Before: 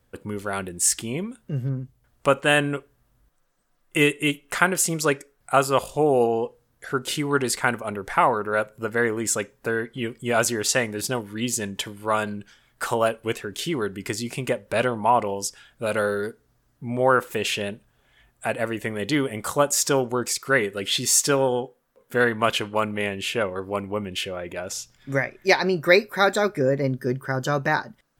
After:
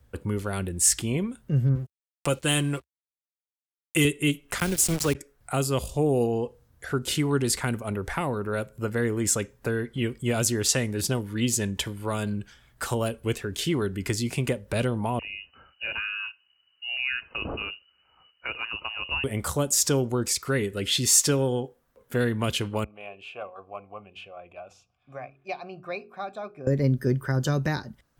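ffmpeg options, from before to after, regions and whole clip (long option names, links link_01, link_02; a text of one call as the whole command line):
ffmpeg -i in.wav -filter_complex "[0:a]asettb=1/sr,asplit=3[link_01][link_02][link_03];[link_01]atrim=end=1.754[link_04];[link_02]atrim=start=1.75:end=4.05,asetpts=PTS-STARTPTS,afade=type=in:duration=0.004:curve=qsin,afade=type=out:start_time=2.296:duration=0.004:curve=qsin,bass=frequency=250:gain=-4,treble=frequency=4000:gain=5,aecho=1:1:5.9:0.5,atrim=end_sample=101430,aeval=exprs='sgn(val(0))*max(abs(val(0))-0.00355,0)':channel_layout=same[link_05];[link_03]atrim=start=4.046[link_06];[link_04][link_05]acrossfade=duration=0.004:curve1=hsin:curve2=qsin[link_07];[link_07][link_06]acrossfade=duration=0.004:curve1=qsin:curve2=hsin,asettb=1/sr,asplit=3[link_08][link_09][link_10];[link_08]atrim=end=4.594[link_11];[link_09]atrim=start=4.59:end=5.15,asetpts=PTS-STARTPTS,afade=type=in:duration=0.004:curve=qsin,afade=type=out:start_time=0.556:duration=0.004:curve=qsin,highpass=frequency=110:width=0.5412,highpass=frequency=110:width=1.3066,aeval=exprs='val(0)*gte(abs(val(0)),0.0447)':channel_layout=same[link_12];[link_10]atrim=start=5.146[link_13];[link_11][link_12]acrossfade=duration=0.004:curve1=hsin:curve2=qsin[link_14];[link_14][link_13]acrossfade=duration=0.004:curve1=qsin:curve2=hsin,asettb=1/sr,asplit=3[link_15][link_16][link_17];[link_15]atrim=end=15.194[link_18];[link_16]atrim=start=15.19:end=19.24,asetpts=PTS-STARTPTS,afade=type=in:duration=0.004:curve=qsin,afade=type=out:start_time=4.046:duration=0.004:curve=qsin,equalizer=frequency=570:width=0.38:gain=-6,bandreject=frequency=1100:width=8.4,lowpass=frequency=2600:width_type=q:width=0.5098,lowpass=frequency=2600:width_type=q:width=0.6013,lowpass=frequency=2600:width_type=q:width=0.9,lowpass=frequency=2600:width_type=q:width=2.563,afreqshift=-3000[link_19];[link_17]atrim=start=19.236[link_20];[link_18][link_19]acrossfade=duration=0.004:curve1=hsin:curve2=qsin[link_21];[link_21][link_20]acrossfade=duration=0.004:curve1=qsin:curve2=hsin,asettb=1/sr,asplit=3[link_22][link_23][link_24];[link_22]atrim=end=22.844[link_25];[link_23]atrim=start=22.84:end=26.67,asetpts=PTS-STARTPTS,afade=type=in:duration=0.004:curve=qsin,afade=type=out:start_time=3.826:duration=0.004:curve=qsin,bandreject=frequency=45.84:width_type=h:width=4,bandreject=frequency=91.68:width_type=h:width=4,bandreject=frequency=137.52:width_type=h:width=4,bandreject=frequency=183.36:width_type=h:width=4,bandreject=frequency=229.2:width_type=h:width=4,bandreject=frequency=275.04:width_type=h:width=4,bandreject=frequency=320.88:width_type=h:width=4,bandreject=frequency=366.72:width_type=h:width=4,bandreject=frequency=412.56:width_type=h:width=4,bandreject=frequency=458.4:width_type=h:width=4,bandreject=frequency=504.24:width_type=h:width=4,asubboost=boost=6:cutoff=200,asplit=3[link_26][link_27][link_28];[link_26]bandpass=frequency=730:width_type=q:width=8,volume=0dB[link_29];[link_27]bandpass=frequency=1090:width_type=q:width=8,volume=-6dB[link_30];[link_28]bandpass=frequency=2440:width_type=q:width=8,volume=-9dB[link_31];[link_29][link_30][link_31]amix=inputs=3:normalize=0[link_32];[link_24]atrim=start=26.666[link_33];[link_25][link_32]acrossfade=duration=0.004:curve1=hsin:curve2=qsin[link_34];[link_34][link_33]acrossfade=duration=0.004:curve1=qsin:curve2=hsin,equalizer=frequency=68:width_type=o:width=1.3:gain=14.5,acrossover=split=410|3000[link_35][link_36][link_37];[link_36]acompressor=threshold=-32dB:ratio=6[link_38];[link_35][link_38][link_37]amix=inputs=3:normalize=0" out.wav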